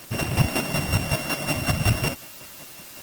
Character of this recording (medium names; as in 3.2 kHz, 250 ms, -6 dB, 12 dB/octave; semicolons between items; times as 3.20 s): a buzz of ramps at a fixed pitch in blocks of 16 samples; chopped level 5.4 Hz, depth 60%, duty 25%; a quantiser's noise floor 8-bit, dither triangular; Opus